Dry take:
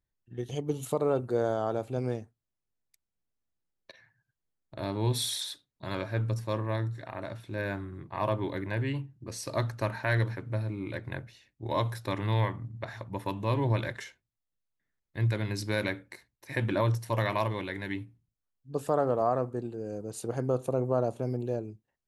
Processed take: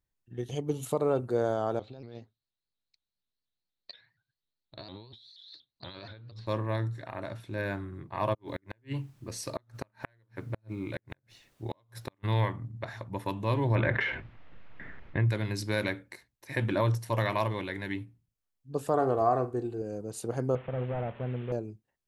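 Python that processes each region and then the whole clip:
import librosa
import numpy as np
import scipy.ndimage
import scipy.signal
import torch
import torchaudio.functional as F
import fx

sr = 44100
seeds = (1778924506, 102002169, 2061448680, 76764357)

y = fx.chain(x, sr, fx.ladder_lowpass(hz=4300.0, resonance_pct=80),
    fx.over_compress(threshold_db=-48.0, ratio=-1.0),
    fx.vibrato_shape(shape='saw_up', rate_hz=4.2, depth_cents=160.0), at=(1.79, 6.47))
y = fx.dmg_noise_colour(y, sr, seeds[0], colour='pink', level_db=-69.0, at=(8.33, 12.23), fade=0.02)
y = fx.gate_flip(y, sr, shuts_db=-21.0, range_db=-40, at=(8.33, 12.23), fade=0.02)
y = fx.chain(y, sr, fx.lowpass(hz=2600.0, slope=24),
    fx.env_flatten(amount_pct=70), at=(13.75, 15.29))
y = fx.chain(y, sr, fx.peak_eq(hz=73.0, db=3.5, octaves=1.9),
    fx.comb(ms=2.7, depth=0.52),
    fx.room_flutter(wall_m=7.7, rt60_s=0.21), at=(18.94, 19.82))
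y = fx.chain(y, sr, fx.delta_mod(bps=16000, step_db=-43.0),
    fx.peak_eq(hz=310.0, db=-10.0, octaves=0.59),
    fx.doppler_dist(depth_ms=0.11), at=(20.55, 21.52))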